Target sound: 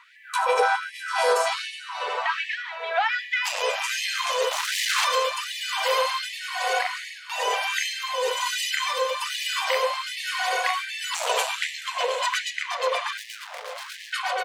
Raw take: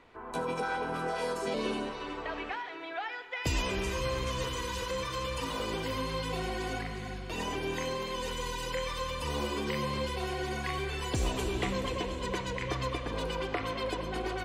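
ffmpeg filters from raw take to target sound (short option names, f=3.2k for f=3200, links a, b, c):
-filter_complex "[0:a]lowshelf=f=340:g=8,asettb=1/sr,asplit=3[a][b][c];[a]atrim=end=1.614[d];[b]atrim=start=1.61:end=2.3,asetpts=PTS-STARTPTS,afade=t=in:d=0.004:c=qsin,afade=t=out:st=0.686:d=0.004:c=qsin,acompressor=threshold=-34dB:ratio=1.5[e];[c]atrim=start=2.296[f];[d][e]acrossfade=d=0.004:c1=hsin:c2=qsin[g];[g][f]acrossfade=d=0.004:c1=qsin:c2=hsin,asplit=2[h][i];[i]aecho=0:1:594:0.0668[j];[h][j]amix=inputs=2:normalize=0,asettb=1/sr,asplit=3[k][l][m];[k]atrim=end=4.514[n];[l]atrim=start=4.51:end=5.05,asetpts=PTS-STARTPTS,afade=t=in:d=0.004:c=qsin,afade=t=out:st=0.536:d=0.004:c=qsin,aeval=exprs='0.0944*(cos(1*acos(clip(val(0)/0.0944,-1,1)))-cos(1*PI/2))+0.0299*(cos(6*acos(clip(val(0)/0.0944,-1,1)))-cos(6*PI/2))':c=same[o];[m]atrim=start=5.046[p];[n][o]acrossfade=d=0.004:c1=hsin:c2=qsin[q];[q][p]acrossfade=d=0.004:c1=qsin:c2=hsin,aeval=exprs='0.2*sin(PI/2*2*val(0)/0.2)':c=same,acrossover=split=490[r][s];[r]aeval=exprs='val(0)*(1-0.5/2+0.5/2*cos(2*PI*1.1*n/s))':c=same[t];[s]aeval=exprs='val(0)*(1-0.5/2-0.5/2*cos(2*PI*1.1*n/s))':c=same[u];[t][u]amix=inputs=2:normalize=0,asettb=1/sr,asplit=3[v][w][x];[v]atrim=end=13.174[y];[w]atrim=start=13.17:end=14.13,asetpts=PTS-STARTPTS,afade=t=in:d=0.004:c=qsin,afade=t=out:st=0.956:d=0.004:c=qsin,asoftclip=type=hard:threshold=-36dB[z];[x]atrim=start=14.126[aa];[y][z]acrossfade=d=0.004:c1=hsin:c2=qsin[ab];[ab][aa]acrossfade=d=0.004:c1=qsin:c2=hsin,afftfilt=real='re*gte(b*sr/1024,410*pow(1700/410,0.5+0.5*sin(2*PI*1.3*pts/sr)))':imag='im*gte(b*sr/1024,410*pow(1700/410,0.5+0.5*sin(2*PI*1.3*pts/sr)))':win_size=1024:overlap=0.75,volume=5dB"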